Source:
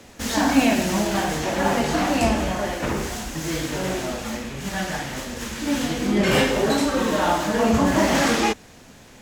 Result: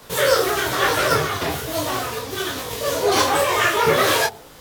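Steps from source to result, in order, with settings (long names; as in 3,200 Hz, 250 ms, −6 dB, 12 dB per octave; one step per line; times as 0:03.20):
wrong playback speed 7.5 ips tape played at 15 ips
hum removal 48.44 Hz, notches 18
micro pitch shift up and down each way 38 cents
level +6 dB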